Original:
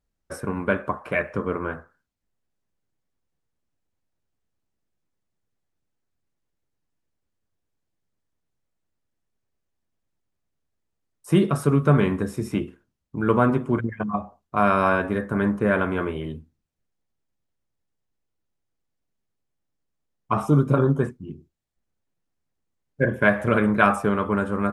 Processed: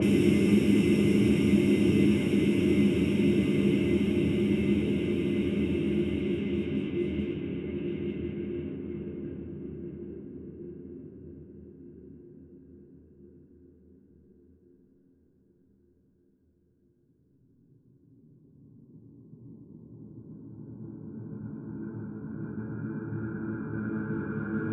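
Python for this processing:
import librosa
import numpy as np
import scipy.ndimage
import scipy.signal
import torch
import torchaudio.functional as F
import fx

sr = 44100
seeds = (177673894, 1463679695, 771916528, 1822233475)

y = fx.paulstretch(x, sr, seeds[0], factor=49.0, window_s=0.5, from_s=12.58)
y = fx.env_lowpass(y, sr, base_hz=370.0, full_db=-27.0)
y = y * 10.0 ** (3.0 / 20.0)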